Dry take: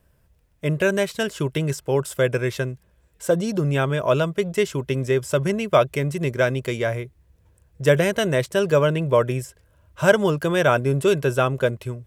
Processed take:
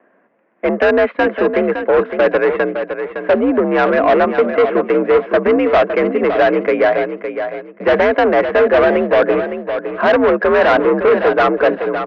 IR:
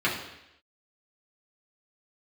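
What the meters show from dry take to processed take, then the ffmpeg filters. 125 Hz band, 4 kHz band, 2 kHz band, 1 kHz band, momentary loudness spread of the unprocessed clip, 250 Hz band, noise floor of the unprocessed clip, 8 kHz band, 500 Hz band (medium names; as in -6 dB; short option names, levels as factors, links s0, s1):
no reading, +1.0 dB, +8.0 dB, +11.0 dB, 7 LU, +7.0 dB, -61 dBFS, under -15 dB, +8.5 dB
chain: -af "asoftclip=type=hard:threshold=0.112,highpass=f=220:t=q:w=0.5412,highpass=f=220:t=q:w=1.307,lowpass=f=2100:t=q:w=0.5176,lowpass=f=2100:t=q:w=0.7071,lowpass=f=2100:t=q:w=1.932,afreqshift=56,aeval=exprs='0.237*sin(PI/2*1.58*val(0)/0.237)':c=same,aecho=1:1:561|1122|1683:0.355|0.0923|0.024,acontrast=72"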